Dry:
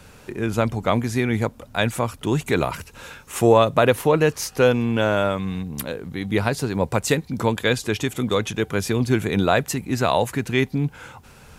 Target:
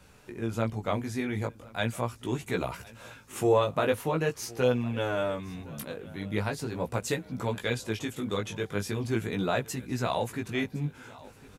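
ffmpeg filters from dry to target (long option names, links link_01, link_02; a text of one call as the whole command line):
ffmpeg -i in.wav -filter_complex "[0:a]asplit=2[link_01][link_02];[link_02]aecho=0:1:1061|2122|3183|4244:0.0841|0.0446|0.0236|0.0125[link_03];[link_01][link_03]amix=inputs=2:normalize=0,flanger=delay=16:depth=3.9:speed=0.41,volume=-6.5dB" out.wav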